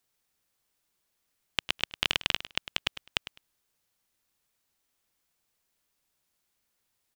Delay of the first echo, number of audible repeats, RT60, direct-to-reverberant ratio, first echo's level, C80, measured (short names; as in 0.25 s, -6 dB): 0.103 s, 2, none, none, -14.0 dB, none